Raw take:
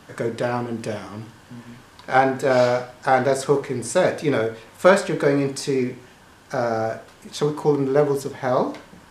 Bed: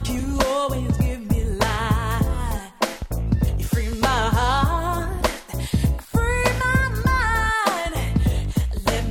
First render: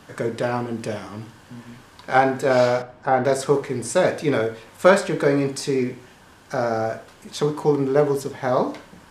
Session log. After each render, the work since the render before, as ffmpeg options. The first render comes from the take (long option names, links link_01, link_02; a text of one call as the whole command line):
ffmpeg -i in.wav -filter_complex "[0:a]asettb=1/sr,asplit=3[link_01][link_02][link_03];[link_01]atrim=end=2.824[link_04];[link_02]atrim=start=2.82:end=3.25,asetpts=PTS-STARTPTS,afade=type=in:duration=0.004:curve=qsin,afade=type=out:start_time=0.426:duration=0.004:curve=qsin,lowpass=frequency=1200:poles=1[link_05];[link_03]atrim=start=3.246[link_06];[link_04][link_05]acrossfade=duration=0.004:curve1=hsin:curve2=qsin[link_07];[link_07][link_06]acrossfade=duration=0.004:curve1=qsin:curve2=hsin" out.wav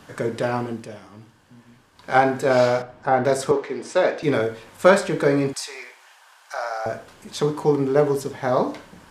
ffmpeg -i in.wav -filter_complex "[0:a]asettb=1/sr,asplit=3[link_01][link_02][link_03];[link_01]atrim=end=3.514[link_04];[link_02]atrim=start=3.51:end=4.23,asetpts=PTS-STARTPTS,afade=type=in:duration=0.004:curve=qsin,afade=type=out:start_time=0.716:duration=0.004:curve=qsin,acrossover=split=240 5800:gain=0.0708 1 0.1[link_05][link_06][link_07];[link_05][link_06][link_07]amix=inputs=3:normalize=0[link_08];[link_03]atrim=start=4.226[link_09];[link_04][link_08]acrossfade=duration=0.004:curve1=hsin:curve2=qsin[link_10];[link_10][link_09]acrossfade=duration=0.004:curve1=qsin:curve2=hsin,asettb=1/sr,asplit=3[link_11][link_12][link_13];[link_11]atrim=end=5.534[link_14];[link_12]atrim=start=5.53:end=6.86,asetpts=PTS-STARTPTS,afade=type=in:duration=0.004:curve=qsin,afade=type=out:start_time=1.326:duration=0.004:curve=qsin,highpass=frequency=730:width=0.5412,highpass=frequency=730:width=1.3066[link_15];[link_13]atrim=start=6.856[link_16];[link_14][link_15]acrossfade=duration=0.004:curve1=hsin:curve2=qsin[link_17];[link_17][link_16]acrossfade=duration=0.004:curve1=qsin:curve2=hsin,asplit=3[link_18][link_19][link_20];[link_18]atrim=end=0.87,asetpts=PTS-STARTPTS,afade=type=out:start_time=0.68:duration=0.19:silence=0.334965[link_21];[link_19]atrim=start=0.87:end=1.94,asetpts=PTS-STARTPTS,volume=-9.5dB[link_22];[link_20]atrim=start=1.94,asetpts=PTS-STARTPTS,afade=type=in:duration=0.19:silence=0.334965[link_23];[link_21][link_22][link_23]concat=n=3:v=0:a=1" out.wav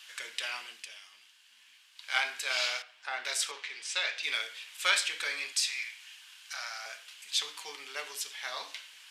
ffmpeg -i in.wav -af "highpass=frequency=2800:width_type=q:width=2.2" out.wav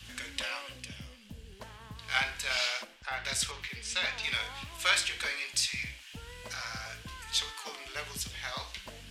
ffmpeg -i in.wav -i bed.wav -filter_complex "[1:a]volume=-27dB[link_01];[0:a][link_01]amix=inputs=2:normalize=0" out.wav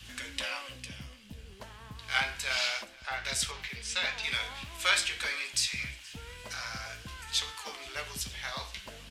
ffmpeg -i in.wav -filter_complex "[0:a]asplit=2[link_01][link_02];[link_02]adelay=15,volume=-11dB[link_03];[link_01][link_03]amix=inputs=2:normalize=0,aecho=1:1:474|948|1422|1896:0.0708|0.0382|0.0206|0.0111" out.wav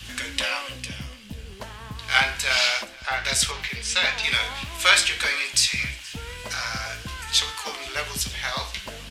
ffmpeg -i in.wav -af "volume=9.5dB" out.wav